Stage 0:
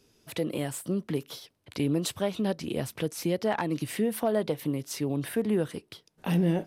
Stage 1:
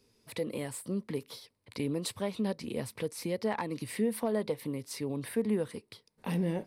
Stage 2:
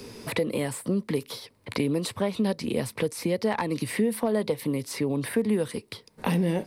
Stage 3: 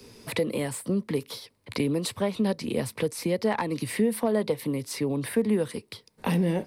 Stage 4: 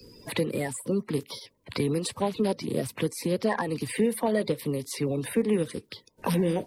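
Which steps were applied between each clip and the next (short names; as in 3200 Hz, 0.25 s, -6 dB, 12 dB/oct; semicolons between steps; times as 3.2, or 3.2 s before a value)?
ripple EQ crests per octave 0.93, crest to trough 6 dB; gain -5 dB
three-band squash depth 70%; gain +6.5 dB
three-band expander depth 40%
bin magnitudes rounded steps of 30 dB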